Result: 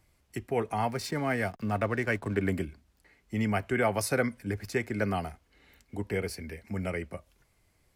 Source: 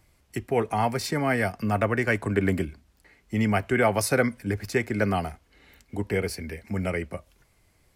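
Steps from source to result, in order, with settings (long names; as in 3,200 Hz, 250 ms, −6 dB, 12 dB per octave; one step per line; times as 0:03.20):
0:00.89–0:02.41: slack as between gear wheels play −41 dBFS
level −5 dB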